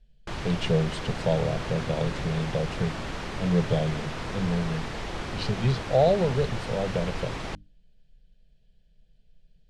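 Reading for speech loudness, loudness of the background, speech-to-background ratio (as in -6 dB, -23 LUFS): -28.0 LUFS, -35.0 LUFS, 7.0 dB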